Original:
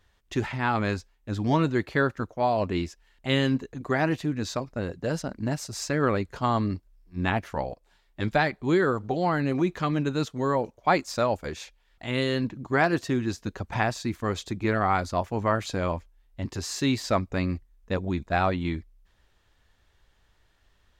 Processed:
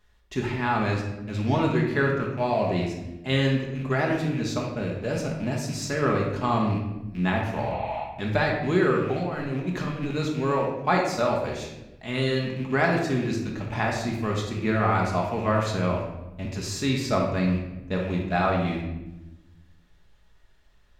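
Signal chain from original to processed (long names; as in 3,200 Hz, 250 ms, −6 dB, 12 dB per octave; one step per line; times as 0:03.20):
loose part that buzzes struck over −41 dBFS, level −33 dBFS
0:07.67–0:08.01: healed spectral selection 620–4,300 Hz before
0:09.19–0:10.11: compressor whose output falls as the input rises −29 dBFS, ratio −0.5
rectangular room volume 460 cubic metres, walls mixed, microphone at 1.4 metres
level −2.5 dB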